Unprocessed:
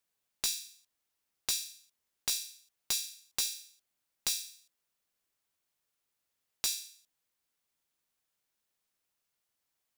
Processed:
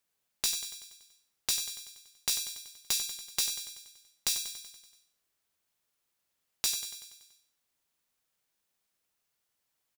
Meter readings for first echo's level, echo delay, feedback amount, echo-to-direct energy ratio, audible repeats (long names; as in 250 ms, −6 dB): −10.5 dB, 95 ms, 59%, −8.5 dB, 6